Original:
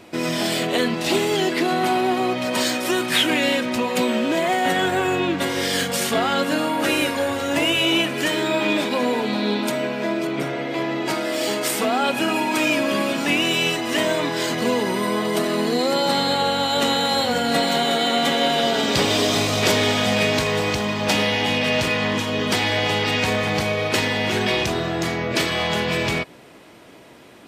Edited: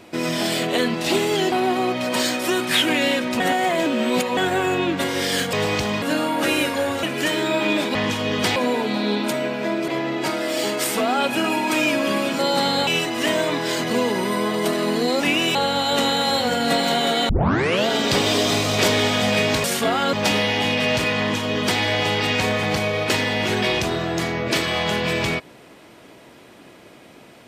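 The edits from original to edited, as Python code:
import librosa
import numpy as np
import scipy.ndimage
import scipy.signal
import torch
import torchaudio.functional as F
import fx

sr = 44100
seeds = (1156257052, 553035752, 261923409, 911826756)

y = fx.edit(x, sr, fx.cut(start_s=1.52, length_s=0.41),
    fx.reverse_span(start_s=3.81, length_s=0.97),
    fx.swap(start_s=5.94, length_s=0.49, other_s=20.48, other_length_s=0.49),
    fx.cut(start_s=7.44, length_s=0.59),
    fx.cut(start_s=10.27, length_s=0.45),
    fx.swap(start_s=13.23, length_s=0.35, other_s=15.91, other_length_s=0.48),
    fx.tape_start(start_s=18.13, length_s=0.58),
    fx.duplicate(start_s=22.03, length_s=0.61, to_s=8.95), tone=tone)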